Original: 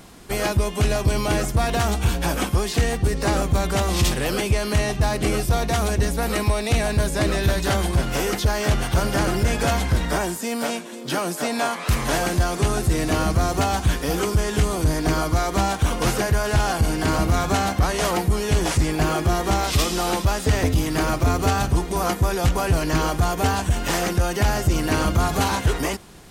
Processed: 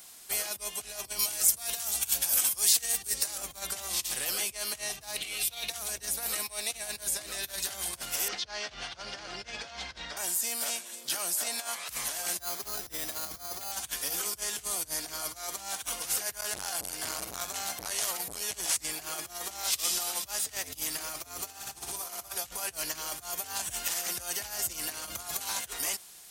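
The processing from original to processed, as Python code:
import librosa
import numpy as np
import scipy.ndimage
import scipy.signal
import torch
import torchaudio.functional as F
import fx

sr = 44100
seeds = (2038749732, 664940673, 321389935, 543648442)

y = fx.high_shelf(x, sr, hz=4200.0, db=10.5, at=(1.19, 3.38))
y = fx.band_shelf(y, sr, hz=3000.0, db=11.5, octaves=1.1, at=(5.16, 5.7))
y = fx.lowpass(y, sr, hz=5000.0, slope=24, at=(8.28, 10.17))
y = fx.resample_bad(y, sr, factor=8, down='filtered', up='hold', at=(12.39, 13.72))
y = fx.transformer_sat(y, sr, knee_hz=360.0, at=(16.4, 18.54))
y = fx.room_flutter(y, sr, wall_m=10.3, rt60_s=1.1, at=(21.48, 22.35), fade=0.02)
y = fx.over_compress(y, sr, threshold_db=-19.0, ratio=-1.0, at=(23.67, 25.49))
y = fx.peak_eq(y, sr, hz=680.0, db=4.5, octaves=0.65)
y = fx.over_compress(y, sr, threshold_db=-22.0, ratio=-0.5)
y = F.preemphasis(torch.from_numpy(y), 0.97).numpy()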